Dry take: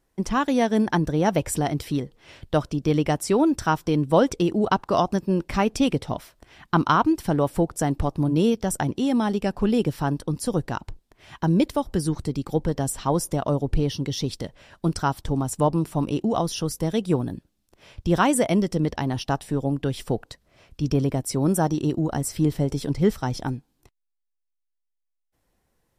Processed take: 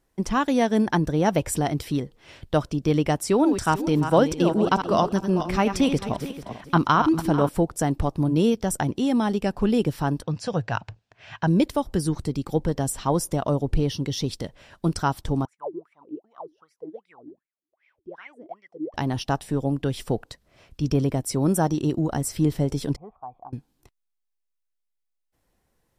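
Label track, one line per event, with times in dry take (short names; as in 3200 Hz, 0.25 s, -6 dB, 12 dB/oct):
3.220000	7.490000	regenerating reverse delay 0.221 s, feedback 45%, level -8.5 dB
10.230000	11.470000	speaker cabinet 100–6600 Hz, peaks and dips at 110 Hz +9 dB, 250 Hz -7 dB, 350 Hz -9 dB, 680 Hz +5 dB, 1600 Hz +7 dB, 2600 Hz +7 dB
15.450000	18.940000	wah 2.6 Hz 300–2300 Hz, Q 20
22.960000	23.530000	vocal tract filter a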